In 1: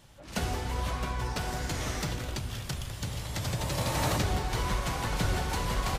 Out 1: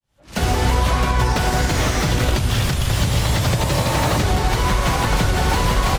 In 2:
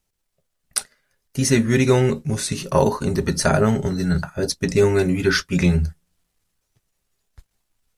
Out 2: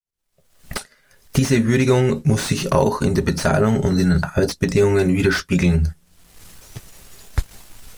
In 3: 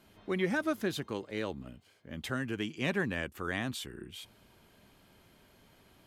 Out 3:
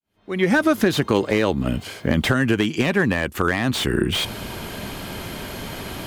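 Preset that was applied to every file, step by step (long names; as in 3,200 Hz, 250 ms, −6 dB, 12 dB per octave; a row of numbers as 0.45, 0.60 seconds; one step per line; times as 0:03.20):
fade in at the beginning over 0.88 s
camcorder AGC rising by 43 dB per second
slew-rate limiting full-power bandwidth 310 Hz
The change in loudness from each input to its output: +13.0, +1.5, +13.5 LU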